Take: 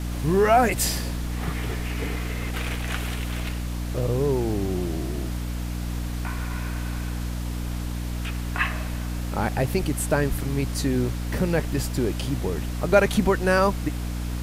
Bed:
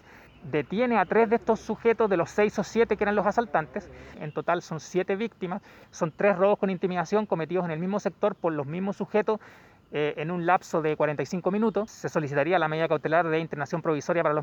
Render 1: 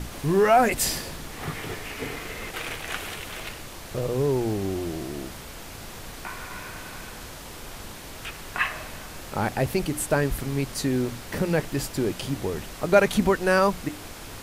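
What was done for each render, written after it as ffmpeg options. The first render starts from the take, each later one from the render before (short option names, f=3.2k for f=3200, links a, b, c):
-af "bandreject=f=60:t=h:w=6,bandreject=f=120:t=h:w=6,bandreject=f=180:t=h:w=6,bandreject=f=240:t=h:w=6,bandreject=f=300:t=h:w=6"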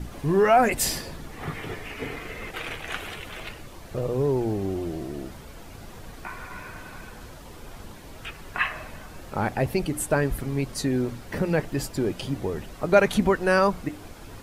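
-af "afftdn=nr=9:nf=-40"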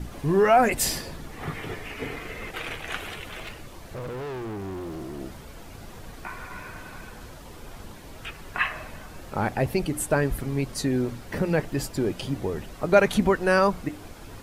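-filter_complex "[0:a]asettb=1/sr,asplit=3[a][b][c];[a]atrim=end=3.444[d];[b]atrim=start=3.44:end=5.21,asetpts=PTS-STARTPTS,afade=t=in:d=0.004:c=qsin,afade=t=out:st=1.766:d=0.004:c=qsin,asoftclip=type=hard:threshold=-32dB[e];[c]atrim=start=5.206[f];[d][e]acrossfade=d=0.004:c1=hsin:c2=qsin[g];[g][f]acrossfade=d=0.004:c1=qsin:c2=hsin"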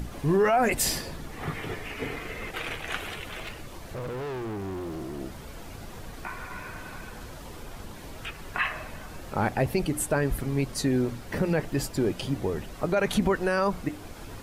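-af "alimiter=limit=-14.5dB:level=0:latency=1:release=44,acompressor=mode=upward:threshold=-36dB:ratio=2.5"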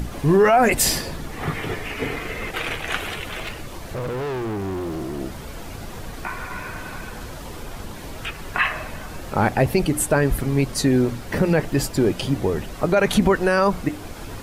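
-af "volume=7dB"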